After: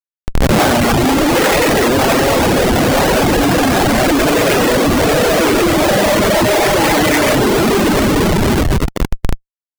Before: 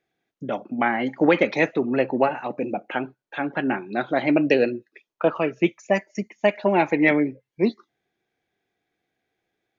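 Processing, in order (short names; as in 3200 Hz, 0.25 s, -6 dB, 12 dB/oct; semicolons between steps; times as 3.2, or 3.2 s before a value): spectral dilation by 0.48 s; hard clip -9 dBFS, distortion -13 dB; 0.92–1.36 fixed phaser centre 470 Hz, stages 6; on a send: multi-head echo 0.244 s, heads first and third, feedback 58%, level -6.5 dB; on the sum: auto swell 0.122 s; 2.34–2.91 LPF 1800 Hz 6 dB/oct; Schmitt trigger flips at -16.5 dBFS; reverb removal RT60 1.2 s; gain +5 dB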